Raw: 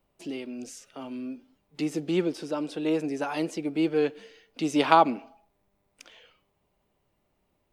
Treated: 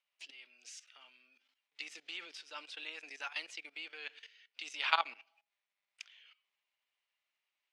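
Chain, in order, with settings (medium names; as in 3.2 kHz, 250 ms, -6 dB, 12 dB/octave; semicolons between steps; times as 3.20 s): level held to a coarse grid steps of 16 dB; ladder band-pass 3.1 kHz, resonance 20%; trim +14.5 dB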